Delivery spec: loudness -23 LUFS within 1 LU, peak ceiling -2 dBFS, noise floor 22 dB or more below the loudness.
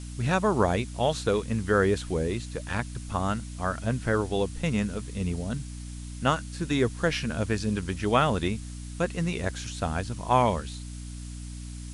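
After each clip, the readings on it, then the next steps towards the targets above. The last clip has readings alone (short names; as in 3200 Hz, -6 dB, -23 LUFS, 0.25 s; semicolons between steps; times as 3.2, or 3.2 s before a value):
hum 60 Hz; harmonics up to 300 Hz; hum level -36 dBFS; noise floor -39 dBFS; noise floor target -50 dBFS; loudness -28.0 LUFS; peak -9.0 dBFS; loudness target -23.0 LUFS
-> de-hum 60 Hz, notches 5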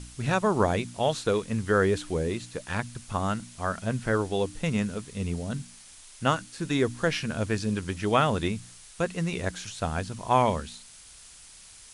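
hum none; noise floor -50 dBFS; noise floor target -51 dBFS
-> denoiser 6 dB, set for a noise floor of -50 dBFS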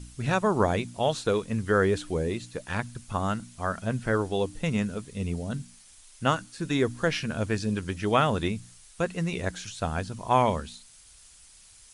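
noise floor -54 dBFS; loudness -28.5 LUFS; peak -9.0 dBFS; loudness target -23.0 LUFS
-> gain +5.5 dB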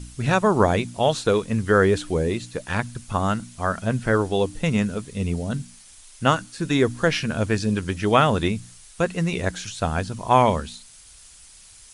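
loudness -23.0 LUFS; peak -3.5 dBFS; noise floor -48 dBFS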